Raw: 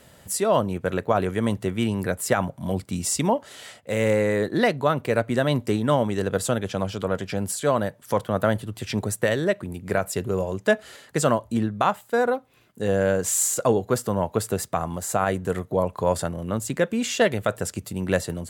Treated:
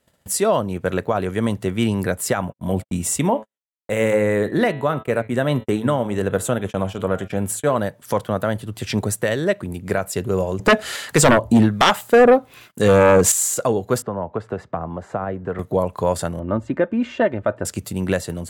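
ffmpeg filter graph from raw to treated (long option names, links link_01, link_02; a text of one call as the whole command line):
ffmpeg -i in.wav -filter_complex "[0:a]asettb=1/sr,asplit=3[link_01][link_02][link_03];[link_01]atrim=end=2.414[link_04];[link_02]atrim=start=2.41:end=7.76,asetpts=PTS-STARTPTS,afade=type=in:duration=0.004:curve=qsin,afade=type=out:start_time=5.346:duration=0.004:curve=qsin,equalizer=frequency=4800:width=2.3:gain=-11.5,bandreject=frequency=108.4:width_type=h:width=4,bandreject=frequency=216.8:width_type=h:width=4,bandreject=frequency=325.2:width_type=h:width=4,bandreject=frequency=433.6:width_type=h:width=4,bandreject=frequency=542:width_type=h:width=4,bandreject=frequency=650.4:width_type=h:width=4,bandreject=frequency=758.8:width_type=h:width=4,bandreject=frequency=867.2:width_type=h:width=4,bandreject=frequency=975.6:width_type=h:width=4,bandreject=frequency=1084:width_type=h:width=4,bandreject=frequency=1192.4:width_type=h:width=4,bandreject=frequency=1300.8:width_type=h:width=4,bandreject=frequency=1409.2:width_type=h:width=4,bandreject=frequency=1517.6:width_type=h:width=4,bandreject=frequency=1626:width_type=h:width=4,bandreject=frequency=1734.4:width_type=h:width=4,bandreject=frequency=1842.8:width_type=h:width=4,bandreject=frequency=1951.2:width_type=h:width=4,bandreject=frequency=2059.6:width_type=h:width=4,bandreject=frequency=2168:width_type=h:width=4,bandreject=frequency=2276.4:width_type=h:width=4,bandreject=frequency=2384.8:width_type=h:width=4,bandreject=frequency=2493.2:width_type=h:width=4,bandreject=frequency=2601.6:width_type=h:width=4,bandreject=frequency=2710:width_type=h:width=4,bandreject=frequency=2818.4:width_type=h:width=4,bandreject=frequency=2926.8:width_type=h:width=4,bandreject=frequency=3035.2:width_type=h:width=4,bandreject=frequency=3143.6:width_type=h:width=4,bandreject=frequency=3252:width_type=h:width=4,bandreject=frequency=3360.4:width_type=h:width=4,bandreject=frequency=3468.8:width_type=h:width=4,bandreject=frequency=3577.2:width_type=h:width=4,bandreject=frequency=3685.6:width_type=h:width=4,bandreject=frequency=3794:width_type=h:width=4,bandreject=frequency=3902.4:width_type=h:width=4,bandreject=frequency=4010.8:width_type=h:width=4,bandreject=frequency=4119.2:width_type=h:width=4,agate=range=-54dB:threshold=-36dB:ratio=16:release=100:detection=peak[link_05];[link_03]atrim=start=7.756[link_06];[link_04][link_05]acrossfade=duration=0.004:curve1=hsin:curve2=qsin[link_07];[link_07][link_06]acrossfade=duration=0.004:curve1=qsin:curve2=hsin,asettb=1/sr,asplit=3[link_08][link_09][link_10];[link_08]atrim=end=10.594[link_11];[link_09]atrim=start=10.59:end=13.32,asetpts=PTS-STARTPTS,afade=type=in:duration=0.004:curve=qsin,afade=type=out:start_time=2.726:duration=0.004:curve=qsin,acrossover=split=870[link_12][link_13];[link_12]aeval=exprs='val(0)*(1-0.7/2+0.7/2*cos(2*PI*1.2*n/s))':channel_layout=same[link_14];[link_13]aeval=exprs='val(0)*(1-0.7/2-0.7/2*cos(2*PI*1.2*n/s))':channel_layout=same[link_15];[link_14][link_15]amix=inputs=2:normalize=0,aeval=exprs='0.355*sin(PI/2*3.16*val(0)/0.355)':channel_layout=same[link_16];[link_10]atrim=start=13.316[link_17];[link_11][link_16]acrossfade=duration=0.004:curve1=hsin:curve2=qsin[link_18];[link_18][link_17]acrossfade=duration=0.004:curve1=qsin:curve2=hsin,asettb=1/sr,asplit=3[link_19][link_20][link_21];[link_19]atrim=end=14.024[link_22];[link_20]atrim=start=14.02:end=15.59,asetpts=PTS-STARTPTS,afade=type=in:duration=0.004:curve=qsin,afade=type=out:start_time=1.566:duration=0.004:curve=qsin,lowpass=1500,acrossover=split=270|610[link_23][link_24][link_25];[link_23]acompressor=threshold=-35dB:ratio=4[link_26];[link_24]acompressor=threshold=-33dB:ratio=4[link_27];[link_25]acompressor=threshold=-32dB:ratio=4[link_28];[link_26][link_27][link_28]amix=inputs=3:normalize=0[link_29];[link_21]atrim=start=15.586[link_30];[link_22][link_29]acrossfade=duration=0.004:curve1=hsin:curve2=qsin[link_31];[link_31][link_30]acrossfade=duration=0.004:curve1=qsin:curve2=hsin,asettb=1/sr,asplit=3[link_32][link_33][link_34];[link_32]atrim=end=16.394[link_35];[link_33]atrim=start=16.39:end=17.65,asetpts=PTS-STARTPTS,afade=type=in:duration=0.004:curve=qsin,afade=type=out:start_time=1.256:duration=0.004:curve=qsin,lowpass=1500,aecho=1:1:3.3:0.5,atrim=end_sample=55566[link_36];[link_34]atrim=start=17.646[link_37];[link_35][link_36]acrossfade=duration=0.004:curve1=hsin:curve2=qsin[link_38];[link_38][link_37]acrossfade=duration=0.004:curve1=qsin:curve2=hsin,agate=range=-21dB:threshold=-48dB:ratio=16:detection=peak,alimiter=limit=-12dB:level=0:latency=1:release=380,volume=4.5dB" out.wav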